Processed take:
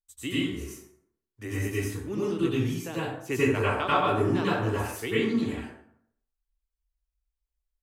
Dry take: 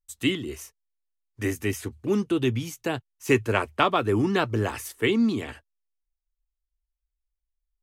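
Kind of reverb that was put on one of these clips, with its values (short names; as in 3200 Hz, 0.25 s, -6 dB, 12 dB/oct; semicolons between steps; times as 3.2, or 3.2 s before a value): plate-style reverb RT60 0.67 s, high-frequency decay 0.6×, pre-delay 80 ms, DRR -8.5 dB; gain -11 dB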